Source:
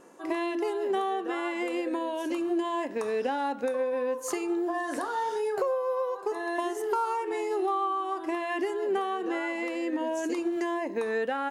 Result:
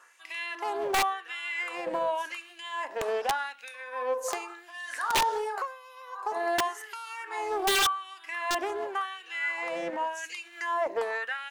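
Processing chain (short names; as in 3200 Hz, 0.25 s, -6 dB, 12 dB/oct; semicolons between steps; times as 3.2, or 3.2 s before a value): LFO high-pass sine 0.89 Hz 590–2600 Hz; wrapped overs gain 19 dB; Doppler distortion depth 0.32 ms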